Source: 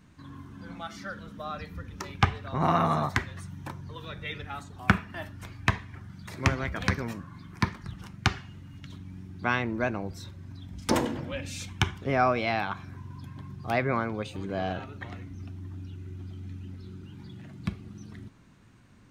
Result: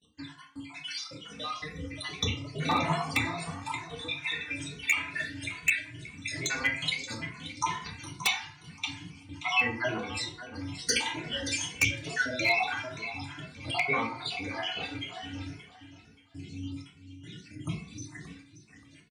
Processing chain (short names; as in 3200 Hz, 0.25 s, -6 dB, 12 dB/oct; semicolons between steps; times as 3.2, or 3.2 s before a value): random spectral dropouts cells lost 65%; elliptic low-pass 9400 Hz, stop band 60 dB; gate -58 dBFS, range -26 dB; HPF 160 Hz 6 dB/oct; resonant high shelf 1700 Hz +11.5 dB, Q 1.5; FDN reverb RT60 0.57 s, low-frequency decay 1×, high-frequency decay 0.55×, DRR -3.5 dB; in parallel at +1 dB: compressor 10:1, threshold -36 dBFS, peak gain reduction 22.5 dB; on the sum: dynamic EQ 940 Hz, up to +5 dB, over -43 dBFS, Q 3; on a send: feedback echo 0.578 s, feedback 29%, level -12 dB; on the sum: wavefolder -10 dBFS; endless flanger 2.3 ms +2.3 Hz; gain -3 dB